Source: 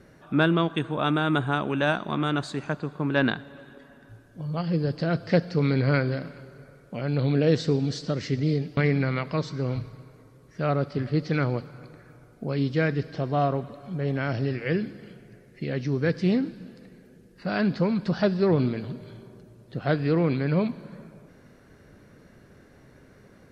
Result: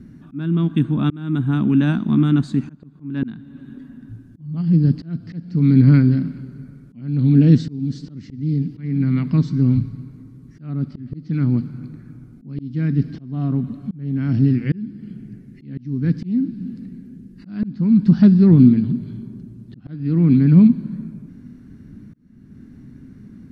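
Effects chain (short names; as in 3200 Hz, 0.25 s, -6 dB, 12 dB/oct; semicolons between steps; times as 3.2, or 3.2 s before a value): resonant low shelf 360 Hz +13.5 dB, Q 3; auto swell 0.51 s; gain -3.5 dB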